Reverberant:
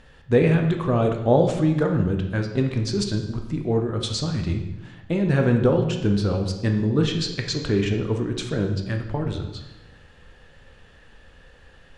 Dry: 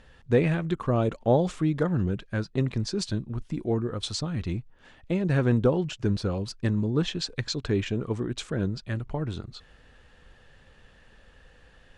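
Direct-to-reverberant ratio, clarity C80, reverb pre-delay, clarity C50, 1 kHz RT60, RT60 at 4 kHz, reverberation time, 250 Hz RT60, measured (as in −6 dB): 3.5 dB, 9.0 dB, 12 ms, 6.5 dB, 0.95 s, 0.85 s, 1.0 s, 1.1 s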